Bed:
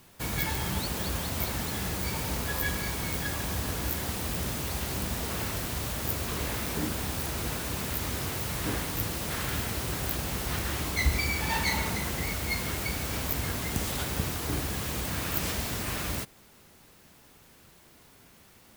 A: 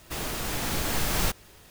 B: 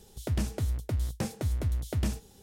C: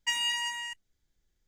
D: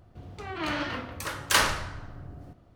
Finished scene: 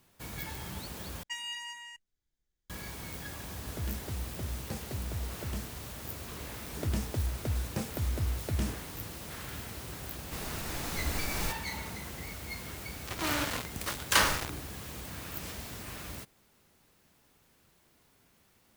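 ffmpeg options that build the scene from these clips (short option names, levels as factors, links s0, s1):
-filter_complex "[2:a]asplit=2[s0][s1];[0:a]volume=0.316[s2];[3:a]acrusher=bits=9:mode=log:mix=0:aa=0.000001[s3];[s0]asoftclip=type=tanh:threshold=0.0596[s4];[1:a]bandreject=f=3200:w=16[s5];[4:a]acrusher=bits=4:mix=0:aa=0.000001[s6];[s2]asplit=2[s7][s8];[s7]atrim=end=1.234[s9];[s3]atrim=end=1.47,asetpts=PTS-STARTPTS,volume=0.335[s10];[s8]atrim=start=2.696[s11];[s4]atrim=end=2.42,asetpts=PTS-STARTPTS,volume=0.501,afade=t=in:d=0.004:c=hsin,afade=t=out:st=2.416:d=0.004:c=hsin,adelay=3500[s12];[s1]atrim=end=2.42,asetpts=PTS-STARTPTS,volume=0.75,afade=t=in:d=0.004:c=hsin,afade=t=out:st=2.416:d=0.004:c=hsin,adelay=6560[s13];[s5]atrim=end=1.7,asetpts=PTS-STARTPTS,volume=0.398,afade=t=in:d=0.004:c=hsin,afade=t=out:st=1.696:d=0.004:c=hsin,adelay=10210[s14];[s6]atrim=end=2.75,asetpts=PTS-STARTPTS,volume=0.75,afade=t=in:d=0.004:c=hsin,afade=t=out:st=2.746:d=0.004:c=hsin,adelay=12610[s15];[s9][s10]acrossfade=d=0.004:c1=hsin:c2=hsin[s16];[s16][s11]acrossfade=d=0.004:c1=hsin:c2=hsin[s17];[s17][s12][s13][s14][s15]amix=inputs=5:normalize=0"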